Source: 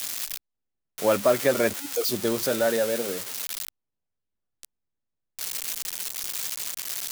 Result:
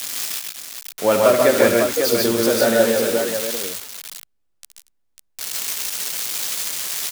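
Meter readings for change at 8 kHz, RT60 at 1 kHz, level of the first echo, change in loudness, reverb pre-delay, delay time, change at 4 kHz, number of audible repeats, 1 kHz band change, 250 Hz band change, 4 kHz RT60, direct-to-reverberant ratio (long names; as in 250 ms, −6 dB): +7.5 dB, no reverb audible, −8.5 dB, +7.5 dB, no reverb audible, 69 ms, +8.0 dB, 4, +8.0 dB, +8.5 dB, no reverb audible, no reverb audible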